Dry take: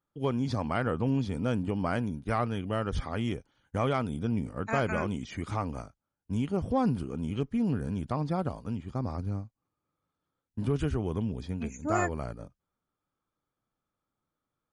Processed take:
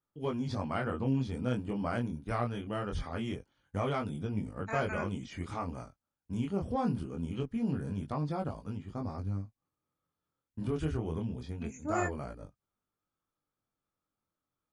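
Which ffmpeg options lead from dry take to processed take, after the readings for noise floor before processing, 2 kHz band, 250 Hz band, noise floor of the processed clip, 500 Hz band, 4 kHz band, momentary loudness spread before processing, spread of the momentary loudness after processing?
under -85 dBFS, -3.5 dB, -4.0 dB, under -85 dBFS, -4.0 dB, -4.0 dB, 8 LU, 9 LU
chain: -af "flanger=delay=19.5:depth=5.9:speed=0.23,volume=0.891"

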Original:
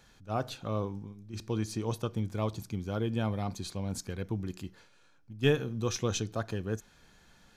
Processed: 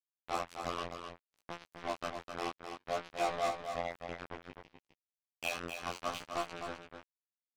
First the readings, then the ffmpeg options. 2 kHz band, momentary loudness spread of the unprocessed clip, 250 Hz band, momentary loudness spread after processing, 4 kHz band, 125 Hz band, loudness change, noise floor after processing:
0.0 dB, 10 LU, -14.0 dB, 14 LU, -3.5 dB, -21.0 dB, -5.5 dB, under -85 dBFS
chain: -filter_complex "[0:a]lowpass=6300,bandreject=f=60:t=h:w=6,bandreject=f=120:t=h:w=6,bandreject=f=180:t=h:w=6,bandreject=f=240:t=h:w=6,afftfilt=real='re*lt(hypot(re,im),0.126)':imag='im*lt(hypot(re,im),0.126)':win_size=1024:overlap=0.75,bass=f=250:g=13,treble=f=4000:g=-4,afftfilt=real='hypot(re,im)*cos(PI*b)':imag='0':win_size=2048:overlap=0.75,asplit=3[s0][s1][s2];[s0]bandpass=f=730:t=q:w=8,volume=1[s3];[s1]bandpass=f=1090:t=q:w=8,volume=0.501[s4];[s2]bandpass=f=2440:t=q:w=8,volume=0.355[s5];[s3][s4][s5]amix=inputs=3:normalize=0,acrusher=bits=7:mix=0:aa=0.5,acontrast=46,flanger=delay=17.5:depth=6.4:speed=0.62,asplit=2[s6][s7];[s7]aecho=0:1:256:0.447[s8];[s6][s8]amix=inputs=2:normalize=0,volume=4.22"

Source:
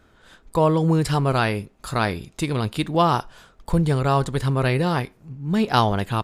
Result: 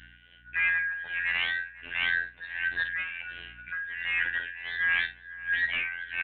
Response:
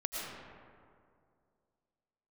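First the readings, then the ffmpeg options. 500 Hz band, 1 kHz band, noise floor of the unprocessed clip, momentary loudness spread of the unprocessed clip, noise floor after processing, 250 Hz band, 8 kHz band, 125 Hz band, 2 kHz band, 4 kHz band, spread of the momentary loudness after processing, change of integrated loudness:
-33.0 dB, -24.0 dB, -57 dBFS, 8 LU, -55 dBFS, under -30 dB, under -40 dB, under -30 dB, +6.5 dB, -4.5 dB, 10 LU, -7.0 dB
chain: -filter_complex "[0:a]afftfilt=real='real(if(lt(b,272),68*(eq(floor(b/68),0)*3+eq(floor(b/68),1)*0+eq(floor(b/68),2)*1+eq(floor(b/68),3)*2)+mod(b,68),b),0)':imag='imag(if(lt(b,272),68*(eq(floor(b/68),0)*3+eq(floor(b/68),1)*0+eq(floor(b/68),2)*1+eq(floor(b/68),3)*2)+mod(b,68),b),0)':win_size=2048:overlap=0.75,bandreject=f=382.8:t=h:w=4,bandreject=f=765.6:t=h:w=4,bandreject=f=1148.4:t=h:w=4,bandreject=f=1531.2:t=h:w=4,bandreject=f=1914:t=h:w=4,bandreject=f=2296.8:t=h:w=4,bandreject=f=2679.6:t=h:w=4,bandreject=f=3062.4:t=h:w=4,afftfilt=real='hypot(re,im)*cos(PI*b)':imag='0':win_size=2048:overlap=0.75,volume=7.5,asoftclip=hard,volume=0.133,areverse,acompressor=threshold=0.0251:ratio=8,areverse,aeval=exprs='val(0)+0.000708*(sin(2*PI*60*n/s)+sin(2*PI*2*60*n/s)/2+sin(2*PI*3*60*n/s)/3+sin(2*PI*4*60*n/s)/4+sin(2*PI*5*60*n/s)/5)':c=same,tremolo=f=1.4:d=0.8,asplit=2[s0][s1];[s1]adelay=49,volume=0.282[s2];[s0][s2]amix=inputs=2:normalize=0,asplit=2[s3][s4];[s4]adelay=498,lowpass=f=1800:p=1,volume=0.141,asplit=2[s5][s6];[s6]adelay=498,lowpass=f=1800:p=1,volume=0.29,asplit=2[s7][s8];[s8]adelay=498,lowpass=f=1800:p=1,volume=0.29[s9];[s3][s5][s7][s9]amix=inputs=4:normalize=0,aresample=8000,aresample=44100,volume=2.66"

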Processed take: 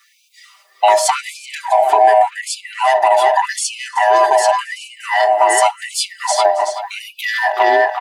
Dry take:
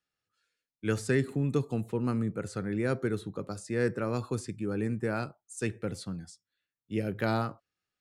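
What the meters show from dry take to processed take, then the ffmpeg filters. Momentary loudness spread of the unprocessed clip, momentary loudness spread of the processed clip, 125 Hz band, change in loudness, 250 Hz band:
9 LU, 13 LU, under -40 dB, +18.0 dB, no reading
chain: -filter_complex "[0:a]afftfilt=real='real(if(lt(b,1008),b+24*(1-2*mod(floor(b/24),2)),b),0)':imag='imag(if(lt(b,1008),b+24*(1-2*mod(floor(b/24),2)),b),0)':win_size=2048:overlap=0.75,asoftclip=type=tanh:threshold=0.106,acontrast=62,highshelf=f=3700:g=-2.5,asplit=2[s0][s1];[s1]adelay=379,lowpass=f=3400:p=1,volume=0.447,asplit=2[s2][s3];[s3]adelay=379,lowpass=f=3400:p=1,volume=0.29,asplit=2[s4][s5];[s5]adelay=379,lowpass=f=3400:p=1,volume=0.29,asplit=2[s6][s7];[s7]adelay=379,lowpass=f=3400:p=1,volume=0.29[s8];[s2][s4][s6][s8]amix=inputs=4:normalize=0[s9];[s0][s9]amix=inputs=2:normalize=0,adynamicequalizer=threshold=0.00708:dfrequency=1200:dqfactor=3.1:tfrequency=1200:tqfactor=3.1:attack=5:release=100:ratio=0.375:range=3:mode=cutabove:tftype=bell,asplit=2[s10][s11];[s11]aecho=0:1:275:0.0708[s12];[s10][s12]amix=inputs=2:normalize=0,acompressor=threshold=0.0178:ratio=12,aecho=1:1:5.1:0.8,alimiter=level_in=25.1:limit=0.891:release=50:level=0:latency=1,afftfilt=real='re*gte(b*sr/1024,260*pow(2300/260,0.5+0.5*sin(2*PI*0.87*pts/sr)))':imag='im*gte(b*sr/1024,260*pow(2300/260,0.5+0.5*sin(2*PI*0.87*pts/sr)))':win_size=1024:overlap=0.75,volume=0.891"

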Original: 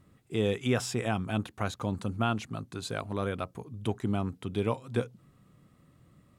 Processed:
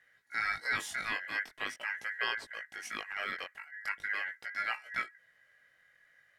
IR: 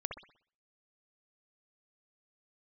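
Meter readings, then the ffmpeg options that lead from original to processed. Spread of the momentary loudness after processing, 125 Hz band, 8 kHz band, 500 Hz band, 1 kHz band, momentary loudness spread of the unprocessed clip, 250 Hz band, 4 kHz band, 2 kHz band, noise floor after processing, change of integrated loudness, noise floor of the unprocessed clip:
8 LU, under -25 dB, -5.0 dB, -18.5 dB, -3.5 dB, 8 LU, -24.0 dB, -1.0 dB, +8.5 dB, -69 dBFS, -3.5 dB, -64 dBFS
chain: -af "aeval=exprs='val(0)*sin(2*PI*1800*n/s)':c=same,flanger=delay=16.5:depth=5.4:speed=0.43"

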